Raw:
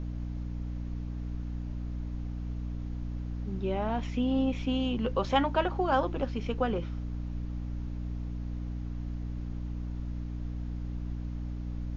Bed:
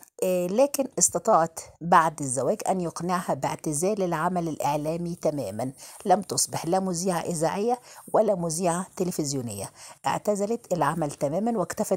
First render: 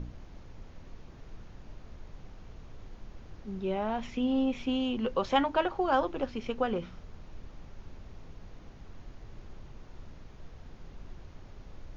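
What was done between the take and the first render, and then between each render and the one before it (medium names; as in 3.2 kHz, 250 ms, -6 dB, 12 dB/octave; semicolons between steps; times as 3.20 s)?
de-hum 60 Hz, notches 5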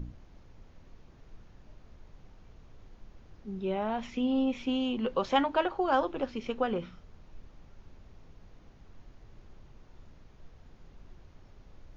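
noise print and reduce 6 dB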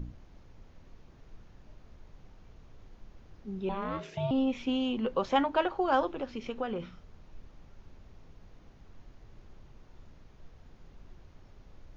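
3.69–4.31 s: ring modulator 400 Hz; 5.00–5.55 s: peaking EQ 3.6 kHz -3 dB 1.9 oct; 6.09–6.80 s: compression 1.5:1, threshold -36 dBFS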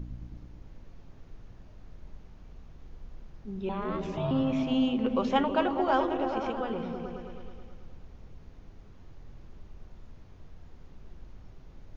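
delay with an opening low-pass 107 ms, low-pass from 200 Hz, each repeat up 1 oct, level 0 dB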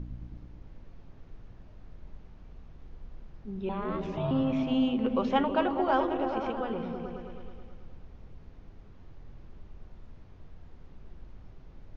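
distance through air 98 m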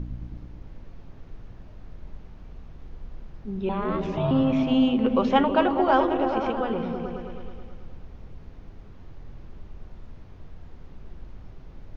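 trim +6 dB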